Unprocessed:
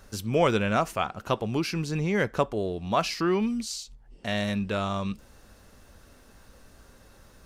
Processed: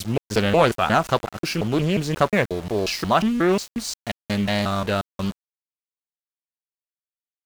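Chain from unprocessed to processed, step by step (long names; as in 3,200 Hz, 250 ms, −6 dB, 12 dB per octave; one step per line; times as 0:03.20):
slices reordered back to front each 179 ms, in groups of 2
centre clipping without the shift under −38 dBFS
highs frequency-modulated by the lows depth 0.34 ms
level +6 dB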